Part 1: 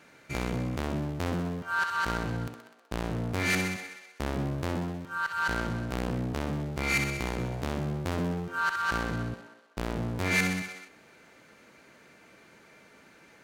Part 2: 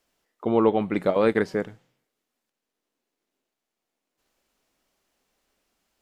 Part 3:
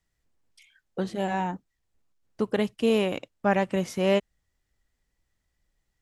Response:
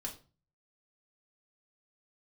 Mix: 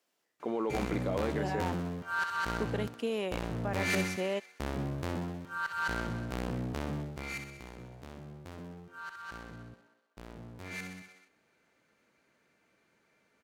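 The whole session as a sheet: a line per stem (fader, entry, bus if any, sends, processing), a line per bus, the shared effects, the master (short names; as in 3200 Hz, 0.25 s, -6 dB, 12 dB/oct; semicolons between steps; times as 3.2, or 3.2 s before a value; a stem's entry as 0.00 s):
6.99 s -4 dB -> 7.46 s -15.5 dB, 0.40 s, no bus, no send, dry
-4.5 dB, 0.00 s, bus A, no send, dry
-6.0 dB, 0.20 s, bus A, no send, dry
bus A: 0.0 dB, HPF 230 Hz 12 dB/oct; limiter -24 dBFS, peak gain reduction 11 dB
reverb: off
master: dry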